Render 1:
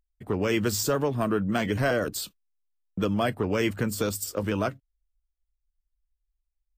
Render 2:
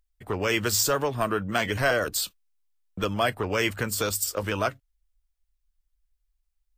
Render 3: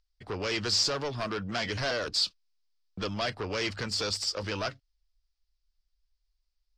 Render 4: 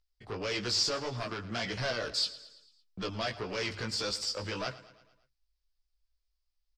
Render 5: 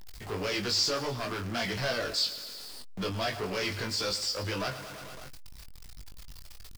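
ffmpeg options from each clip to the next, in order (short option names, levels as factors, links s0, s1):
-af "equalizer=f=210:t=o:w=2.4:g=-11.5,volume=1.88"
-af "asoftclip=type=tanh:threshold=0.0596,lowpass=f=4900:t=q:w=4.4,volume=0.708"
-af "flanger=delay=15.5:depth=2.6:speed=1.7,aecho=1:1:112|224|336|448|560:0.141|0.0749|0.0397|0.021|0.0111"
-filter_complex "[0:a]aeval=exprs='val(0)+0.5*0.0106*sgn(val(0))':c=same,asplit=2[s0][s1];[s1]adelay=21,volume=0.473[s2];[s0][s2]amix=inputs=2:normalize=0"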